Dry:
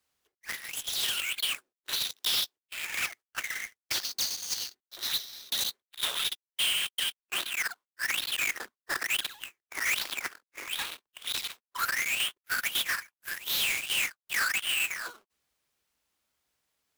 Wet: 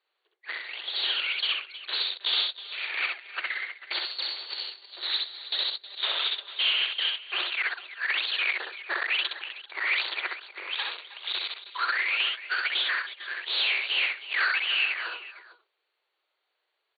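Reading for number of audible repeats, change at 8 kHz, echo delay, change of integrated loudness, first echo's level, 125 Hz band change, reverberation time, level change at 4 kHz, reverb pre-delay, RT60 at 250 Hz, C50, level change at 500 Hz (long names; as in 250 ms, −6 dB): 3, below −40 dB, 65 ms, +2.5 dB, −3.0 dB, below −40 dB, no reverb audible, +3.5 dB, no reverb audible, no reverb audible, no reverb audible, +4.0 dB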